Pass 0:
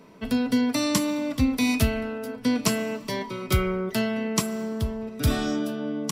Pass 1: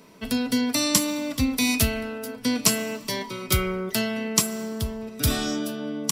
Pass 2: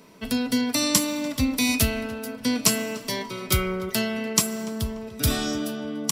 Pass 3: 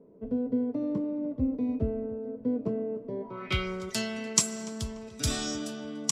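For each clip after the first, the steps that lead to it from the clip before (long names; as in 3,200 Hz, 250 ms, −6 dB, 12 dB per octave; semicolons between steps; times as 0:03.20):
high-shelf EQ 3,200 Hz +11 dB; level −1.5 dB
tape delay 293 ms, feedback 48%, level −16 dB, low-pass 2,500 Hz
low-pass filter sweep 460 Hz → 7,300 Hz, 0:03.20–0:03.71; level −7 dB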